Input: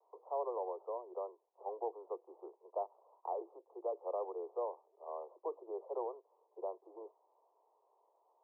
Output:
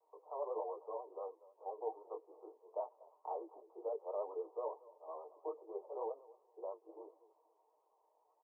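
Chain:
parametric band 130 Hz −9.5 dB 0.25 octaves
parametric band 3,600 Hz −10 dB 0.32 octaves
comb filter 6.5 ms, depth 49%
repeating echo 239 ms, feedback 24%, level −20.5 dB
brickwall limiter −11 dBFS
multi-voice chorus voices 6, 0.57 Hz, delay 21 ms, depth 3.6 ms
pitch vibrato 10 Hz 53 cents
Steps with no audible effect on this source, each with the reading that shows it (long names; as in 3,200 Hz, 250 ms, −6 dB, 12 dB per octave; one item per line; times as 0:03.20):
parametric band 130 Hz: nothing at its input below 300 Hz
parametric band 3,600 Hz: nothing at its input above 1,300 Hz
brickwall limiter −11 dBFS: peak of its input −25.0 dBFS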